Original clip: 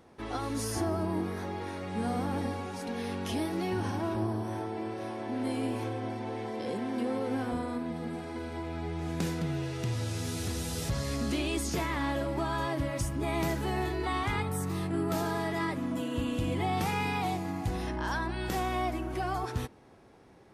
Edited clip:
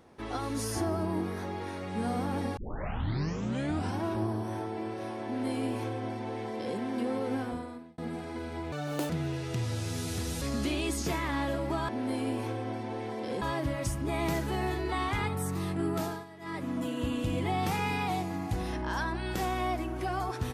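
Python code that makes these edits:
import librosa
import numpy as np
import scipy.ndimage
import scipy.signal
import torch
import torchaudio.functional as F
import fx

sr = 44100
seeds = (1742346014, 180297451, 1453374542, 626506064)

y = fx.edit(x, sr, fx.tape_start(start_s=2.57, length_s=1.4),
    fx.duplicate(start_s=5.25, length_s=1.53, to_s=12.56),
    fx.fade_out_span(start_s=7.34, length_s=0.64),
    fx.speed_span(start_s=8.72, length_s=0.67, speed=1.78),
    fx.cut(start_s=10.71, length_s=0.38),
    fx.fade_down_up(start_s=14.99, length_s=0.96, db=-17.0, fade_s=0.41, curve='qsin'), tone=tone)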